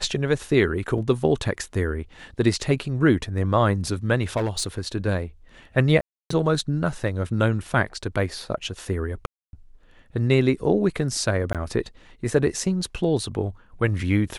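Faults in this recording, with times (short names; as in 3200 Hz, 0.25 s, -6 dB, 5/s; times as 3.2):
0.98 gap 3.3 ms
4.36–4.79 clipped -19.5 dBFS
6.01–6.3 gap 0.294 s
9.26–9.53 gap 0.271 s
11.53–11.55 gap 17 ms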